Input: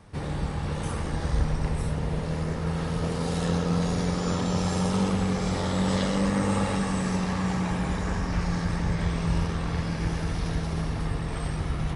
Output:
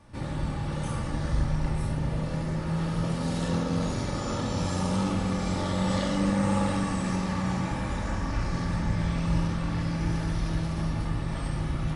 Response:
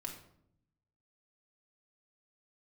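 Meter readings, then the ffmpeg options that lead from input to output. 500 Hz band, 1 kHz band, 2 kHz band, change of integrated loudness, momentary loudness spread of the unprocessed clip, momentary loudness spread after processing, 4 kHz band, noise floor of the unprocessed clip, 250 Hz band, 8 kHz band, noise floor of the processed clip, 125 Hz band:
−2.5 dB, −1.0 dB, −2.0 dB, −1.0 dB, 5 LU, 5 LU, −2.0 dB, −31 dBFS, −1.0 dB, −2.5 dB, −32 dBFS, −1.0 dB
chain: -filter_complex "[1:a]atrim=start_sample=2205,atrim=end_sample=3528,asetrate=40572,aresample=44100[link_01];[0:a][link_01]afir=irnorm=-1:irlink=0"

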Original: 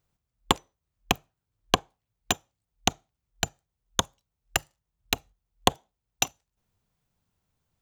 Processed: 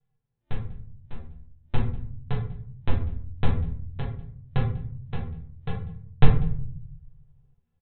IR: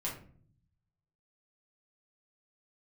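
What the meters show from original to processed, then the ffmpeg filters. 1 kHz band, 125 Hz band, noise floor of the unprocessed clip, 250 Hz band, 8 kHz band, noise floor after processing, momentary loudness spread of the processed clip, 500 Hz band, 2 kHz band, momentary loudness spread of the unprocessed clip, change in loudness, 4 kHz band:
−9.0 dB, +14.5 dB, −85 dBFS, +3.0 dB, below −40 dB, −76 dBFS, 19 LU, −3.5 dB, −9.0 dB, 5 LU, −1.5 dB, −17.5 dB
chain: -filter_complex "[0:a]acrossover=split=810[link_01][link_02];[link_01]acompressor=threshold=-39dB:ratio=5[link_03];[link_03][link_02]amix=inputs=2:normalize=0,crystalizer=i=7:c=0,aresample=8000,acrusher=samples=26:mix=1:aa=0.000001,aresample=44100,flanger=delay=6.4:depth=6.6:regen=31:speed=0.47:shape=sinusoidal,aecho=1:1:195:0.0668[link_04];[1:a]atrim=start_sample=2205,asetrate=37044,aresample=44100[link_05];[link_04][link_05]afir=irnorm=-1:irlink=0,volume=-3dB"

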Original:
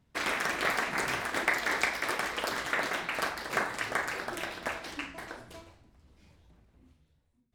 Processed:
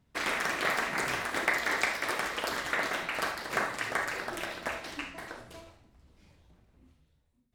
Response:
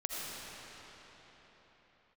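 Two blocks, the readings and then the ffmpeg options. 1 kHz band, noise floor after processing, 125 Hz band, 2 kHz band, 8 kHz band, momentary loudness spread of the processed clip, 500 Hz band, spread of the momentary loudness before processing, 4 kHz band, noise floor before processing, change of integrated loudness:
0.0 dB, −70 dBFS, −0.5 dB, 0.0 dB, 0.0 dB, 11 LU, 0.0 dB, 11 LU, 0.0 dB, −70 dBFS, 0.0 dB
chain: -filter_complex "[1:a]atrim=start_sample=2205,atrim=end_sample=3528[link_01];[0:a][link_01]afir=irnorm=-1:irlink=0,volume=1.5dB"

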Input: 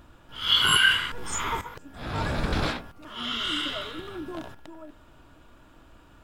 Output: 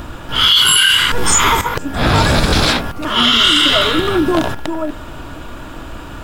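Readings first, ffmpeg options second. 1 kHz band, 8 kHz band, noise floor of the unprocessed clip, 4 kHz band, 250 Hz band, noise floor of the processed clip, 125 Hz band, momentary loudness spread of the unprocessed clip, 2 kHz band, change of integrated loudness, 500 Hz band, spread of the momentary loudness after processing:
+15.0 dB, +18.0 dB, −55 dBFS, +14.0 dB, +17.5 dB, −31 dBFS, +15.5 dB, 21 LU, +10.0 dB, +13.0 dB, +18.0 dB, 23 LU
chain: -filter_complex "[0:a]acrossover=split=3600[link_01][link_02];[link_01]acompressor=threshold=-33dB:ratio=6[link_03];[link_03][link_02]amix=inputs=2:normalize=0,alimiter=level_in=24.5dB:limit=-1dB:release=50:level=0:latency=1,volume=-1dB"

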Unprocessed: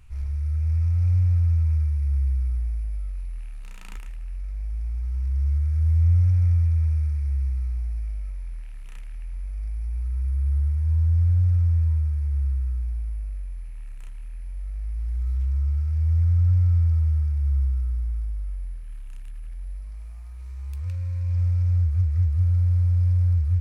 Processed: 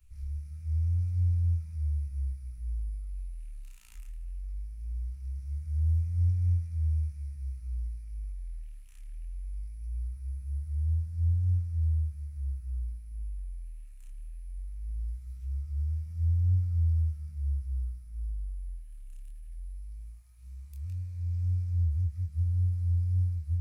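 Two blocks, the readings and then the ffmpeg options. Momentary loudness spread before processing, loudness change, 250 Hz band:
20 LU, −8.5 dB, can't be measured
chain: -filter_complex "[0:a]flanger=delay=18.5:depth=7.3:speed=1.8,afwtdn=0.02,acrossover=split=180|390[link_01][link_02][link_03];[link_03]crystalizer=i=9:c=0[link_04];[link_01][link_02][link_04]amix=inputs=3:normalize=0,volume=-5.5dB"

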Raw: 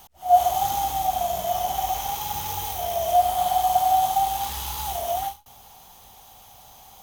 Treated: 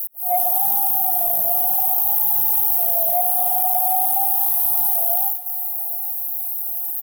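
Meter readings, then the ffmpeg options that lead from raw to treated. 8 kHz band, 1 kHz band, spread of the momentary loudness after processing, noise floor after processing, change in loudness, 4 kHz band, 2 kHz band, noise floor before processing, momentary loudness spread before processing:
+6.5 dB, −4.5 dB, 7 LU, −26 dBFS, +7.5 dB, below −10 dB, can't be measured, −50 dBFS, 9 LU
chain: -filter_complex "[0:a]acrossover=split=8200[link_01][link_02];[link_02]acompressor=threshold=-43dB:ratio=4:attack=1:release=60[link_03];[link_01][link_03]amix=inputs=2:normalize=0,lowshelf=frequency=180:gain=-5.5,aecho=1:1:818|1636|2454|3272:0.141|0.065|0.0299|0.0137,asoftclip=type=tanh:threshold=-11dB,highpass=frequency=110:width=0.5412,highpass=frequency=110:width=1.3066,equalizer=frequency=2700:width_type=o:width=2.2:gain=-13.5,aexciter=amount=11.6:drive=9.2:freq=10000"

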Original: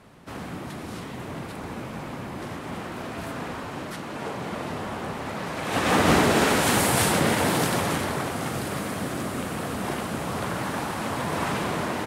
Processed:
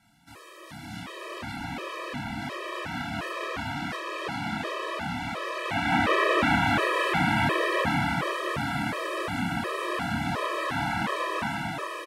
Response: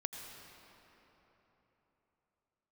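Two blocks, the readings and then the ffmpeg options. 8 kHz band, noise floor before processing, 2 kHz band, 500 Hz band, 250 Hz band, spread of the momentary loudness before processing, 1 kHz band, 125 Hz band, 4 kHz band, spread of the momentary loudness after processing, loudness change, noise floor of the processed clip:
−13.5 dB, −37 dBFS, +1.5 dB, −3.5 dB, −3.5 dB, 15 LU, −0.5 dB, −3.5 dB, −2.5 dB, 12 LU, −1.5 dB, −47 dBFS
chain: -filter_complex "[0:a]tiltshelf=frequency=1400:gain=-5.5,acrossover=split=2700[link_01][link_02];[link_02]acompressor=threshold=-40dB:ratio=4:attack=1:release=60[link_03];[link_01][link_03]amix=inputs=2:normalize=0,equalizer=frequency=430:width=7:gain=-4,acrossover=split=4600[link_04][link_05];[link_04]dynaudnorm=framelen=210:gausssize=9:maxgain=12dB[link_06];[link_05]asoftclip=type=hard:threshold=-40dB[link_07];[link_06][link_07]amix=inputs=2:normalize=0,asplit=2[link_08][link_09];[link_09]adelay=28,volume=-4.5dB[link_10];[link_08][link_10]amix=inputs=2:normalize=0,asplit=2[link_11][link_12];[link_12]aecho=0:1:405:0.596[link_13];[link_11][link_13]amix=inputs=2:normalize=0,afftfilt=real='re*gt(sin(2*PI*1.4*pts/sr)*(1-2*mod(floor(b*sr/1024/330),2)),0)':imag='im*gt(sin(2*PI*1.4*pts/sr)*(1-2*mod(floor(b*sr/1024/330),2)),0)':win_size=1024:overlap=0.75,volume=-7.5dB"

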